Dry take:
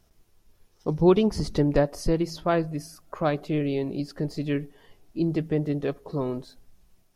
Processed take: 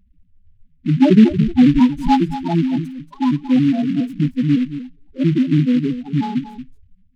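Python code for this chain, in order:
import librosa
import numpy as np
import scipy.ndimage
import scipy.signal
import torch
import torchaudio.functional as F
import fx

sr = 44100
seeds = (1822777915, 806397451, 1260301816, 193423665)

y = fx.pitch_trill(x, sr, semitones=9.0, every_ms=138)
y = fx.bass_treble(y, sr, bass_db=9, treble_db=7)
y = fx.small_body(y, sr, hz=(240.0, 840.0), ring_ms=25, db=13)
y = fx.spec_topn(y, sr, count=4)
y = y + 10.0 ** (-12.0 / 20.0) * np.pad(y, (int(230 * sr / 1000.0), 0))[:len(y)]
y = fx.noise_mod_delay(y, sr, seeds[0], noise_hz=2300.0, depth_ms=0.038)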